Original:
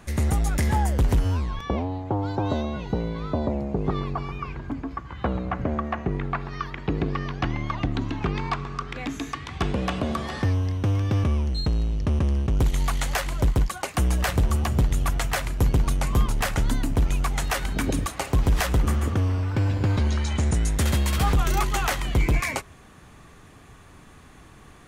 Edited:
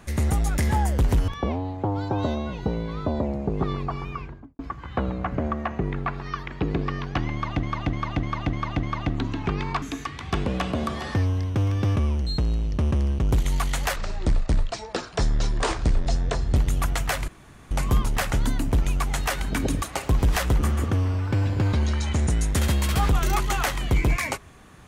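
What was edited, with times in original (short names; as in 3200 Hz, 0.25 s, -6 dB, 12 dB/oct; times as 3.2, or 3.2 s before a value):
1.28–1.55 cut
4.37–4.86 studio fade out
7.6–7.9 loop, 6 plays
8.59–9.1 cut
13.24–14.8 speed 60%
15.52–15.95 room tone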